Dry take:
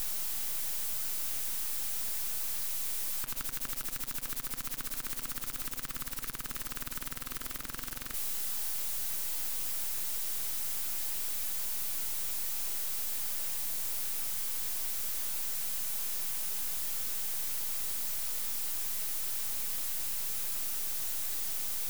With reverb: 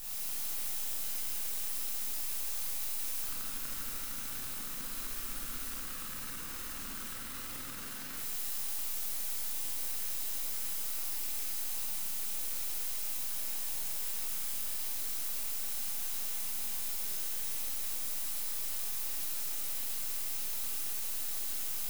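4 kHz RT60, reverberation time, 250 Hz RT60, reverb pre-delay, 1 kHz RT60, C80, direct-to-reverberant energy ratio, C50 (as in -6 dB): 1.6 s, 1.6 s, 1.5 s, 27 ms, 1.6 s, -0.5 dB, -8.0 dB, -3.5 dB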